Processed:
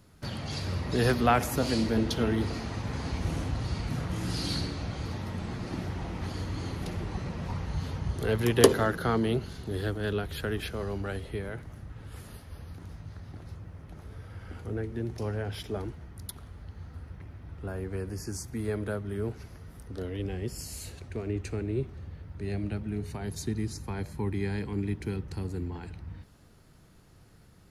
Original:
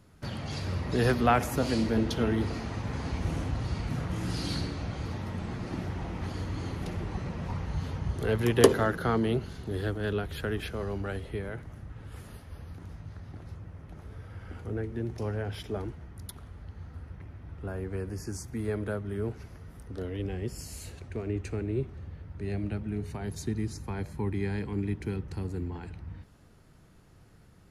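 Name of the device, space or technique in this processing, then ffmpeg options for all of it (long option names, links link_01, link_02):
presence and air boost: -af "equalizer=frequency=4300:width_type=o:width=0.77:gain=3,highshelf=frequency=9100:gain=6"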